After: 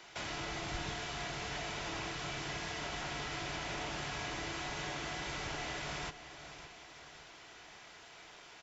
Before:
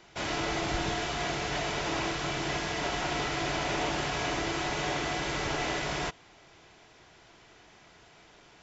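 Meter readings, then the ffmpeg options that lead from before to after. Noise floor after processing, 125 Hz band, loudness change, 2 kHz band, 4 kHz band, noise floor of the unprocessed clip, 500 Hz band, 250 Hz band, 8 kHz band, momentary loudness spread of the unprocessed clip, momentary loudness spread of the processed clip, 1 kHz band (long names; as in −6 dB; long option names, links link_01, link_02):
−55 dBFS, −7.5 dB, −8.5 dB, −7.5 dB, −7.0 dB, −57 dBFS, −11.0 dB, −10.5 dB, can't be measured, 1 LU, 14 LU, −9.5 dB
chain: -filter_complex "[0:a]lowshelf=frequency=460:gain=-11,acrossover=split=210[link_01][link_02];[link_02]acompressor=threshold=-48dB:ratio=2.5[link_03];[link_01][link_03]amix=inputs=2:normalize=0,aecho=1:1:560|1120|1680|2240|2800:0.237|0.111|0.0524|0.0246|0.0116,volume=3.5dB"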